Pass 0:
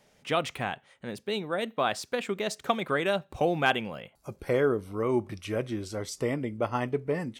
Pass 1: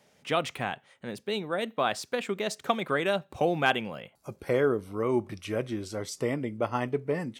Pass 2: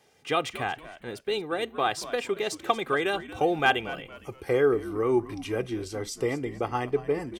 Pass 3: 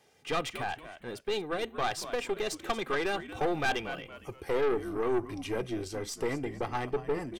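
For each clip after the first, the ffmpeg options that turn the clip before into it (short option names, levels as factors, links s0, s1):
-af "highpass=87"
-filter_complex "[0:a]aecho=1:1:2.5:0.57,asplit=4[s0][s1][s2][s3];[s1]adelay=231,afreqshift=-87,volume=0.178[s4];[s2]adelay=462,afreqshift=-174,volume=0.0603[s5];[s3]adelay=693,afreqshift=-261,volume=0.0207[s6];[s0][s4][s5][s6]amix=inputs=4:normalize=0"
-af "aeval=exprs='(tanh(15.8*val(0)+0.5)-tanh(0.5))/15.8':c=same"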